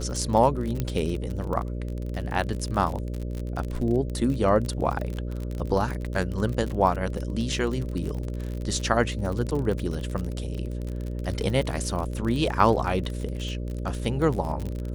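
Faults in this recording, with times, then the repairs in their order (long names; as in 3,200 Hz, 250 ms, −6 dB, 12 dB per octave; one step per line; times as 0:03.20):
mains buzz 60 Hz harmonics 10 −31 dBFS
surface crackle 38 per second −29 dBFS
0:00.80: click −14 dBFS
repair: click removal
hum removal 60 Hz, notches 10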